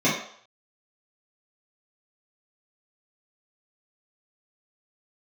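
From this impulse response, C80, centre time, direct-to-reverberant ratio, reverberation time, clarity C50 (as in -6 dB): 7.5 dB, 42 ms, -11.0 dB, 0.60 s, 3.5 dB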